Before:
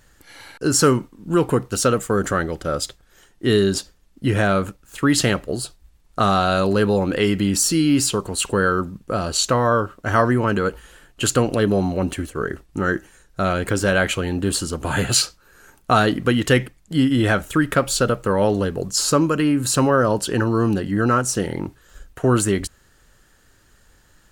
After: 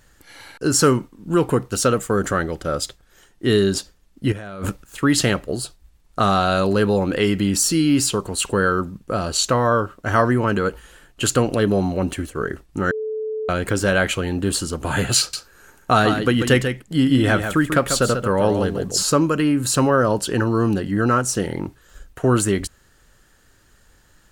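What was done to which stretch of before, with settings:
4.32–4.84 negative-ratio compressor -30 dBFS
12.91–13.49 bleep 435 Hz -23 dBFS
15.19–19.03 echo 0.141 s -7.5 dB

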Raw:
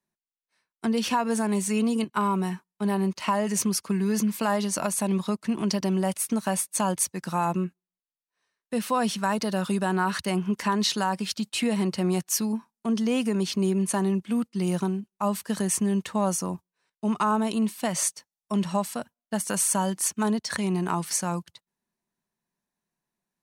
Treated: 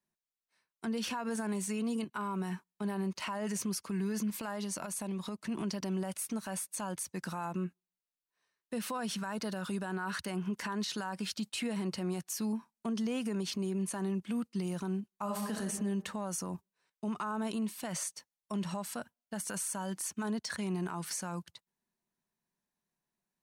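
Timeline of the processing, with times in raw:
4.3–5.49 compressor, threshold -30 dBFS
15.13–15.65 reverb throw, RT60 0.93 s, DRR 2.5 dB
whole clip: dynamic EQ 1500 Hz, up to +6 dB, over -48 dBFS, Q 4.3; compressor, threshold -25 dBFS; limiter -24 dBFS; gain -3.5 dB

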